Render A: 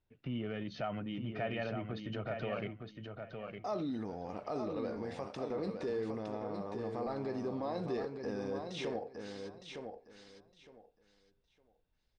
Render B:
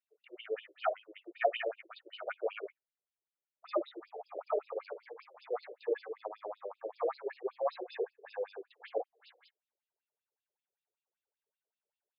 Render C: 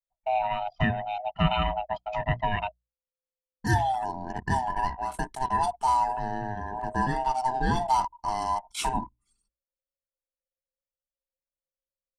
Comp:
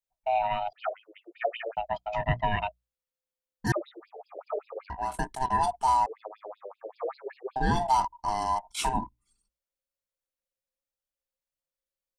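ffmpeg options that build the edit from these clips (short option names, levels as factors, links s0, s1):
-filter_complex "[1:a]asplit=3[s0][s1][s2];[2:a]asplit=4[s3][s4][s5][s6];[s3]atrim=end=0.732[s7];[s0]atrim=start=0.728:end=1.772[s8];[s4]atrim=start=1.768:end=3.722[s9];[s1]atrim=start=3.718:end=4.902[s10];[s5]atrim=start=4.898:end=6.062[s11];[s2]atrim=start=6.058:end=7.562[s12];[s6]atrim=start=7.558[s13];[s7][s8]acrossfade=d=0.004:c1=hsin:c2=hsin[s14];[s14][s9]acrossfade=d=0.004:c1=hsin:c2=hsin[s15];[s15][s10]acrossfade=d=0.004:c1=hsin:c2=hsin[s16];[s16][s11]acrossfade=d=0.004:c1=hsin:c2=hsin[s17];[s17][s12]acrossfade=d=0.004:c1=hsin:c2=hsin[s18];[s18][s13]acrossfade=d=0.004:c1=hsin:c2=hsin"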